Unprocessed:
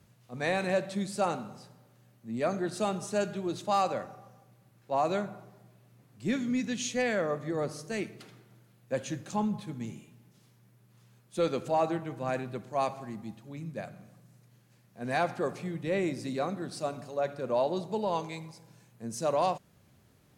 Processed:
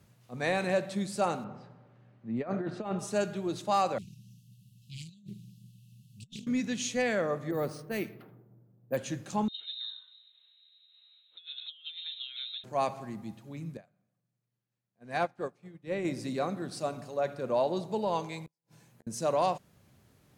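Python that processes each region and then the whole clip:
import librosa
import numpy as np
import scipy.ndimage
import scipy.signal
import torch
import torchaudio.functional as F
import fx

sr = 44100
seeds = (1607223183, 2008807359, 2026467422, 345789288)

y = fx.chain(x, sr, fx.lowpass(hz=2300.0, slope=12),
    fx.over_compress(threshold_db=-32.0, ratio=-0.5), at=(1.44, 2.99))
y = fx.chain(y, sr, fx.brickwall_bandstop(low_hz=230.0, high_hz=2600.0),
    fx.over_compress(threshold_db=-45.0, ratio=-0.5),
    fx.doppler_dist(depth_ms=0.34), at=(3.98, 6.47))
y = fx.chain(y, sr, fx.env_lowpass(base_hz=440.0, full_db=-28.5),
    fx.resample_bad(factor=3, down='filtered', up='hold'), at=(7.51, 8.97))
y = fx.chain(y, sr, fx.freq_invert(carrier_hz=3900),
    fx.differentiator(),
    fx.over_compress(threshold_db=-41.0, ratio=-0.5), at=(9.48, 12.64))
y = fx.chain(y, sr, fx.high_shelf(hz=6700.0, db=-4.0),
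    fx.upward_expand(threshold_db=-42.0, expansion=2.5), at=(13.77, 16.05))
y = fx.chain(y, sr, fx.gate_flip(shuts_db=-43.0, range_db=-42),
    fx.doubler(ms=13.0, db=-10.0), at=(18.46, 19.07))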